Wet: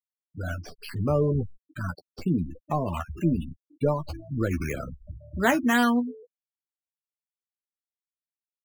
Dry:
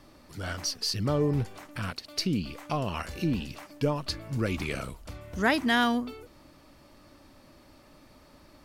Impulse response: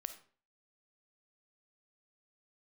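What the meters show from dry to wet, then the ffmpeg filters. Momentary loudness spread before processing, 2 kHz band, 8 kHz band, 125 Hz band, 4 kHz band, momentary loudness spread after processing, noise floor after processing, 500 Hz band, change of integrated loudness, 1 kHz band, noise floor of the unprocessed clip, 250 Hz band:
16 LU, +0.5 dB, -4.0 dB, +3.0 dB, -8.0 dB, 16 LU, under -85 dBFS, +3.0 dB, +2.0 dB, +2.0 dB, -56 dBFS, +3.5 dB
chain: -filter_complex "[0:a]lowpass=5900,afftfilt=real='re*gte(hypot(re,im),0.0398)':imag='im*gte(hypot(re,im),0.0398)':win_size=1024:overlap=0.75,acrossover=split=210|1800|3400[s0][s1][s2][s3];[s2]acrusher=samples=9:mix=1:aa=0.000001:lfo=1:lforange=5.4:lforate=2[s4];[s3]acompressor=threshold=0.00126:ratio=6[s5];[s0][s1][s4][s5]amix=inputs=4:normalize=0,asplit=2[s6][s7];[s7]adelay=12,volume=0.447[s8];[s6][s8]amix=inputs=2:normalize=0,volume=1.33"

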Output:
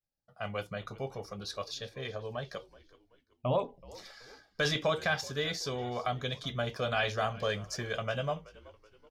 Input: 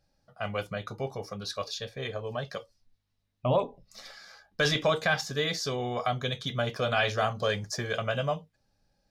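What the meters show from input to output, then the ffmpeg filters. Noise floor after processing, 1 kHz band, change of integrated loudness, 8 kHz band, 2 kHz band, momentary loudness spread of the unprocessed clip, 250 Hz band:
-74 dBFS, -4.0 dB, -4.0 dB, -4.0 dB, -4.0 dB, 14 LU, -4.0 dB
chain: -filter_complex "[0:a]asplit=4[s0][s1][s2][s3];[s1]adelay=377,afreqshift=-66,volume=0.0944[s4];[s2]adelay=754,afreqshift=-132,volume=0.0417[s5];[s3]adelay=1131,afreqshift=-198,volume=0.0182[s6];[s0][s4][s5][s6]amix=inputs=4:normalize=0,agate=range=0.0224:threshold=0.001:ratio=3:detection=peak,volume=0.631"

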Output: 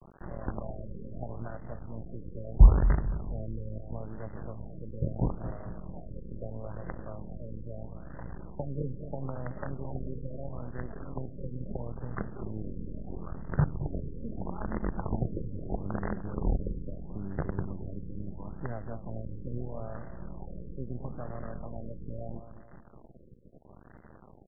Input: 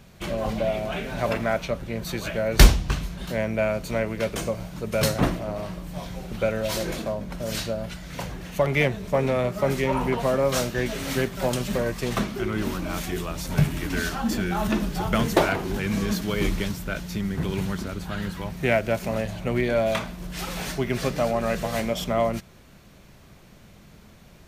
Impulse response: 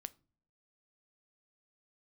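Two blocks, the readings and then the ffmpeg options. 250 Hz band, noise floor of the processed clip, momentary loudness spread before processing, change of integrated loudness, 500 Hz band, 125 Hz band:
-11.0 dB, -53 dBFS, 9 LU, -9.5 dB, -16.5 dB, -5.0 dB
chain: -filter_complex "[0:a]asuperstop=centerf=3700:order=20:qfactor=0.63,acrossover=split=150[s0][s1];[s1]acompressor=threshold=0.00708:ratio=2.5[s2];[s0][s2]amix=inputs=2:normalize=0,acrusher=bits=5:dc=4:mix=0:aa=0.000001,asplit=2[s3][s4];[s4]adelay=221,lowpass=f=1100:p=1,volume=0.282,asplit=2[s5][s6];[s6]adelay=221,lowpass=f=1100:p=1,volume=0.5,asplit=2[s7][s8];[s8]adelay=221,lowpass=f=1100:p=1,volume=0.5,asplit=2[s9][s10];[s10]adelay=221,lowpass=f=1100:p=1,volume=0.5,asplit=2[s11][s12];[s12]adelay=221,lowpass=f=1100:p=1,volume=0.5[s13];[s3][s5][s7][s9][s11][s13]amix=inputs=6:normalize=0,afftfilt=real='re*lt(b*sr/1024,550*pow(2100/550,0.5+0.5*sin(2*PI*0.76*pts/sr)))':imag='im*lt(b*sr/1024,550*pow(2100/550,0.5+0.5*sin(2*PI*0.76*pts/sr)))':win_size=1024:overlap=0.75,volume=0.841"

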